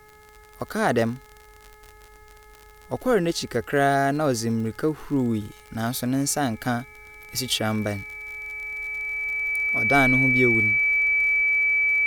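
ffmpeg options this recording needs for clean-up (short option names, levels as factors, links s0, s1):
-af "adeclick=t=4,bandreject=f=424.3:t=h:w=4,bandreject=f=848.6:t=h:w=4,bandreject=f=1272.9:t=h:w=4,bandreject=f=1697.2:t=h:w=4,bandreject=f=2121.5:t=h:w=4,bandreject=f=2300:w=30,agate=range=0.0891:threshold=0.00891"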